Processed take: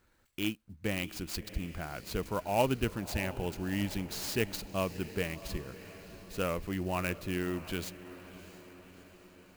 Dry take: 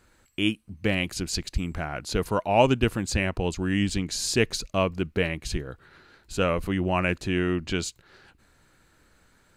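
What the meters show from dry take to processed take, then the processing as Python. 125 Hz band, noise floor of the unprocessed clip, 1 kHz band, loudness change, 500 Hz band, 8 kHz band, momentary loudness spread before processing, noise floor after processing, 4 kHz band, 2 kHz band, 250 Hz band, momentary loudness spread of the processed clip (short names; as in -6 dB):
-8.5 dB, -62 dBFS, -8.5 dB, -8.5 dB, -8.5 dB, -9.5 dB, 9 LU, -68 dBFS, -9.5 dB, -9.0 dB, -8.5 dB, 16 LU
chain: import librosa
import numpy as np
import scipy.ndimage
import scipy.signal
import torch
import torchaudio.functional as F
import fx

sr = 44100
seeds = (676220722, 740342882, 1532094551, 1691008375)

y = fx.echo_diffused(x, sr, ms=656, feedback_pct=59, wet_db=-15.0)
y = fx.clock_jitter(y, sr, seeds[0], jitter_ms=0.026)
y = y * librosa.db_to_amplitude(-8.5)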